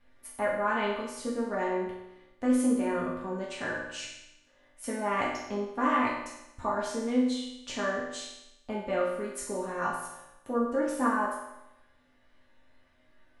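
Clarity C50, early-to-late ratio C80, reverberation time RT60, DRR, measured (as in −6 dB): 2.5 dB, 5.0 dB, 0.90 s, −6.5 dB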